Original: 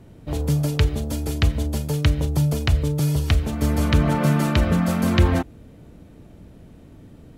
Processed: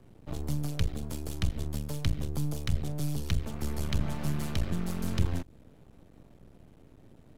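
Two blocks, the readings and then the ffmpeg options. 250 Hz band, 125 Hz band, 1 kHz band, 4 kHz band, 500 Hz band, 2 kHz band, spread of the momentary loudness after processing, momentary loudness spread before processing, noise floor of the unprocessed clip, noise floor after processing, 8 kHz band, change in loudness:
-13.0 dB, -12.0 dB, -15.5 dB, -11.0 dB, -15.0 dB, -15.0 dB, 6 LU, 7 LU, -47 dBFS, -57 dBFS, -9.0 dB, -12.5 dB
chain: -filter_complex "[0:a]aeval=exprs='max(val(0),0)':c=same,acrossover=split=220|3000[a][b][c];[b]acompressor=threshold=-34dB:ratio=6[d];[a][d][c]amix=inputs=3:normalize=0,volume=-6dB"

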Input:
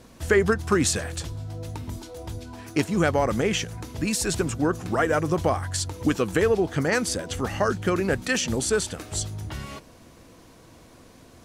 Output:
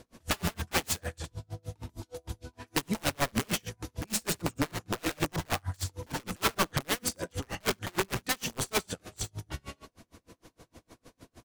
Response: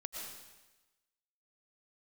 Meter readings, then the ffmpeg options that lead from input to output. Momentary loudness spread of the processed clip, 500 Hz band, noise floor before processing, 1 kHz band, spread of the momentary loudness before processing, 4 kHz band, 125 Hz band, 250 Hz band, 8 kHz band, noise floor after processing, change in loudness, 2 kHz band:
13 LU, -13.5 dB, -51 dBFS, -6.0 dB, 14 LU, -2.5 dB, -8.0 dB, -10.0 dB, -5.5 dB, -76 dBFS, -8.0 dB, -7.0 dB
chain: -filter_complex "[0:a]bandreject=f=50:t=h:w=6,bandreject=f=100:t=h:w=6,bandreject=f=150:t=h:w=6,bandreject=f=200:t=h:w=6,bandreject=f=250:t=h:w=6,asplit=2[a][b];[b]alimiter=limit=-17dB:level=0:latency=1:release=29,volume=2dB[c];[a][c]amix=inputs=2:normalize=0,aeval=exprs='(mod(3.98*val(0)+1,2)-1)/3.98':c=same,aecho=1:1:65|75:0.211|0.266[d];[1:a]atrim=start_sample=2205,atrim=end_sample=3528,asetrate=39249,aresample=44100[e];[d][e]afir=irnorm=-1:irlink=0,aeval=exprs='val(0)*pow(10,-36*(0.5-0.5*cos(2*PI*6.5*n/s))/20)':c=same,volume=-3dB"

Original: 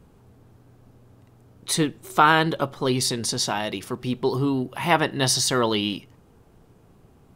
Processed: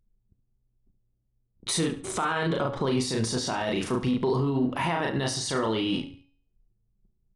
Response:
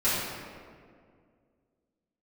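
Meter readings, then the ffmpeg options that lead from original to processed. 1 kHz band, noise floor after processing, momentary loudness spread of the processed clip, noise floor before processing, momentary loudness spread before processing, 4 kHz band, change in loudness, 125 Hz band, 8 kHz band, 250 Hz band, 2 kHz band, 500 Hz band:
-7.5 dB, -73 dBFS, 4 LU, -55 dBFS, 11 LU, -6.5 dB, -4.5 dB, -2.0 dB, -6.5 dB, -1.5 dB, -7.0 dB, -2.5 dB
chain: -filter_complex "[0:a]asplit=2[a][b];[b]adelay=36,volume=-3.5dB[c];[a][c]amix=inputs=2:normalize=0,agate=range=-14dB:threshold=-48dB:ratio=16:detection=peak,acompressor=threshold=-24dB:ratio=6,alimiter=level_in=0.5dB:limit=-24dB:level=0:latency=1:release=14,volume=-0.5dB,anlmdn=0.0631,bandreject=f=278.6:t=h:w=4,bandreject=f=557.2:t=h:w=4,bandreject=f=835.8:t=h:w=4,bandreject=f=1.1144k:t=h:w=4,bandreject=f=1.393k:t=h:w=4,bandreject=f=1.6716k:t=h:w=4,bandreject=f=1.9502k:t=h:w=4,bandreject=f=2.2288k:t=h:w=4,bandreject=f=2.5074k:t=h:w=4,bandreject=f=2.786k:t=h:w=4,bandreject=f=3.0646k:t=h:w=4,bandreject=f=3.3432k:t=h:w=4,bandreject=f=3.6218k:t=h:w=4,bandreject=f=3.9004k:t=h:w=4,bandreject=f=4.179k:t=h:w=4,bandreject=f=4.4576k:t=h:w=4,bandreject=f=4.7362k:t=h:w=4,bandreject=f=5.0148k:t=h:w=4,bandreject=f=5.2934k:t=h:w=4,bandreject=f=5.572k:t=h:w=4,bandreject=f=5.8506k:t=h:w=4,bandreject=f=6.1292k:t=h:w=4,asplit=2[d][e];[e]aecho=0:1:71|142|213:0.224|0.0649|0.0188[f];[d][f]amix=inputs=2:normalize=0,aresample=22050,aresample=44100,adynamicequalizer=threshold=0.00355:dfrequency=2500:dqfactor=0.7:tfrequency=2500:tqfactor=0.7:attack=5:release=100:ratio=0.375:range=3:mode=cutabove:tftype=highshelf,volume=6.5dB"

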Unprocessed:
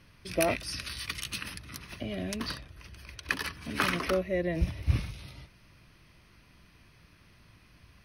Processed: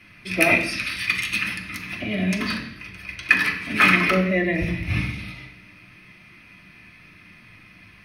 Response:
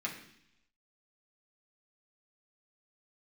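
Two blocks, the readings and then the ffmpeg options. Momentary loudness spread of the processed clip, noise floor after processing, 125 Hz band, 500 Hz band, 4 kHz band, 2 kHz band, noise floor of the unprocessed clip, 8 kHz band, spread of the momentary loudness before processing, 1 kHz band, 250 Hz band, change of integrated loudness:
17 LU, -50 dBFS, +6.5 dB, +5.0 dB, +8.0 dB, +15.5 dB, -60 dBFS, +3.5 dB, 17 LU, +9.5 dB, +11.0 dB, +11.5 dB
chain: -filter_complex "[0:a]equalizer=f=2.3k:t=o:w=0.77:g=8[a];[1:a]atrim=start_sample=2205,afade=t=out:st=0.38:d=0.01,atrim=end_sample=17199[b];[a][b]afir=irnorm=-1:irlink=0,volume=5.5dB"

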